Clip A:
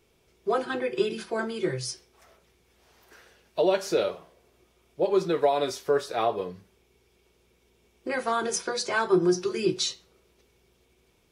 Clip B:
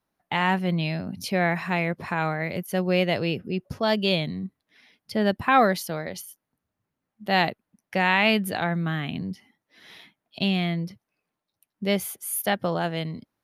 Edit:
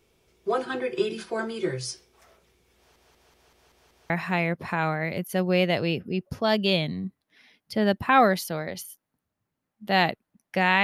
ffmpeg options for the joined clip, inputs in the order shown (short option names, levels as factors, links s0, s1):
-filter_complex "[0:a]apad=whole_dur=10.83,atrim=end=10.83,asplit=7[s0][s1][s2][s3][s4][s5][s6];[s0]atrim=end=2.962[s7];[s1]atrim=start=2.768:end=2.962[s8];[s2]atrim=start=2.768:end=2.962[s9];[s3]atrim=start=2.768:end=2.962[s10];[s4]atrim=start=2.768:end=2.962[s11];[s5]atrim=start=2.768:end=2.962[s12];[s6]atrim=start=2.768:end=2.962[s13];[1:a]atrim=start=1.488:end=8.22[s14];[s7][s8]acrossfade=d=0.004:c1=hsin:c2=hsin[s15];[s15][s9]acrossfade=d=0.004:c1=hsin:c2=hsin[s16];[s16][s10]acrossfade=d=0.004:c1=hsin:c2=hsin[s17];[s17][s11]acrossfade=d=0.004:c1=hsin:c2=hsin[s18];[s18][s12]acrossfade=d=0.004:c1=hsin:c2=hsin[s19];[s19][s13]acrossfade=d=0.004:c1=hsin:c2=hsin[s20];[s20][s14]acrossfade=d=0.004:c1=hsin:c2=hsin"